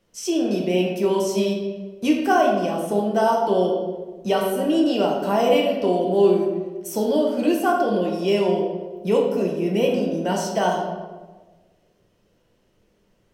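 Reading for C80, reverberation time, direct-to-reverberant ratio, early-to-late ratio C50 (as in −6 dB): 5.5 dB, 1.4 s, −1.5 dB, 3.0 dB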